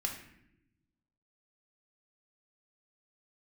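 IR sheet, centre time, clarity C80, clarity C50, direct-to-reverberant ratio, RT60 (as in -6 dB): 27 ms, 9.5 dB, 7.0 dB, 1.0 dB, not exponential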